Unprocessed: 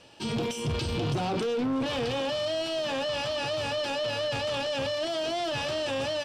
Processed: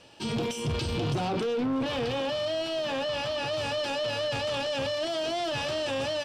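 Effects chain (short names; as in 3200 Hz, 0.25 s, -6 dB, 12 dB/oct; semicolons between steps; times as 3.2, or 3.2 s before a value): 1.28–3.53 bell 8100 Hz -4 dB 1.5 oct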